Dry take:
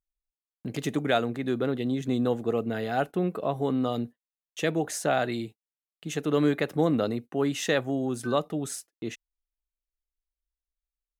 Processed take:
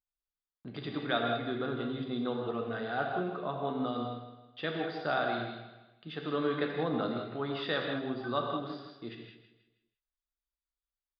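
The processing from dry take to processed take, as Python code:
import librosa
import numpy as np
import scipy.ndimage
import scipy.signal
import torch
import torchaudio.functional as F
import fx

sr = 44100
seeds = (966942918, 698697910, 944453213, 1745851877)

p1 = scipy.signal.sosfilt(scipy.signal.cheby1(6, 9, 4900.0, 'lowpass', fs=sr, output='sos'), x)
p2 = p1 + fx.echo_feedback(p1, sr, ms=160, feedback_pct=39, wet_db=-11.0, dry=0)
p3 = fx.rev_gated(p2, sr, seeds[0], gate_ms=230, shape='flat', drr_db=1.0)
y = F.gain(torch.from_numpy(p3), -2.0).numpy()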